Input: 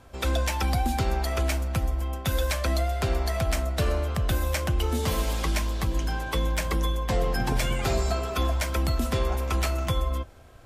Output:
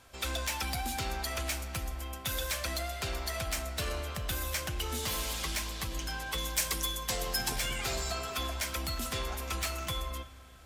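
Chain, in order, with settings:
tilt shelving filter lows −7 dB, about 1,200 Hz
soft clipping −23 dBFS, distortion −14 dB
0:06.38–0:07.56: bass and treble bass −2 dB, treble +8 dB
comb and all-pass reverb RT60 2.8 s, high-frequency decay 0.65×, pre-delay 0 ms, DRR 13 dB
level −4 dB

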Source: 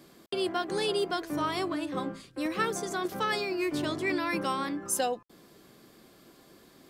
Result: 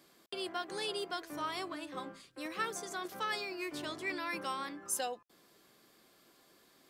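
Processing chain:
low-shelf EQ 430 Hz −11 dB
level −5 dB

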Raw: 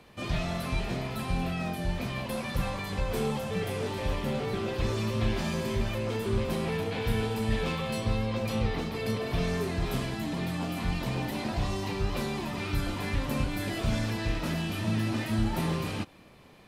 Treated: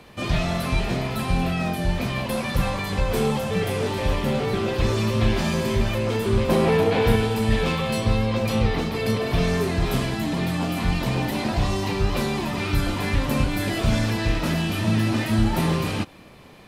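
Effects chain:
0:06.49–0:07.16: parametric band 560 Hz +6.5 dB 2.8 octaves
level +7.5 dB

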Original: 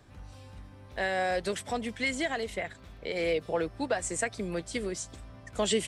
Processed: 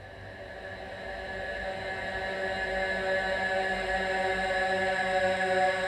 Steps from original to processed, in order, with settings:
fade in at the beginning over 1.91 s
extreme stretch with random phases 18×, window 0.50 s, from 0:00.83
level +6.5 dB

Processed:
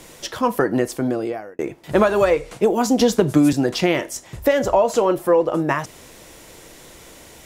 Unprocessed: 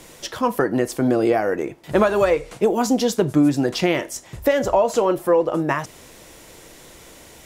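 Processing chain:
0:00.78–0:01.59: fade out
0:02.99–0:03.53: multiband upward and downward compressor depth 100%
level +1 dB

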